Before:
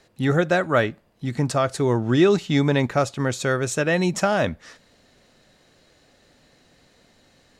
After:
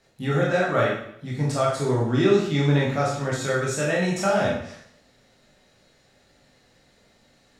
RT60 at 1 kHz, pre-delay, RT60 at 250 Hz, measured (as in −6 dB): 0.70 s, 7 ms, 0.65 s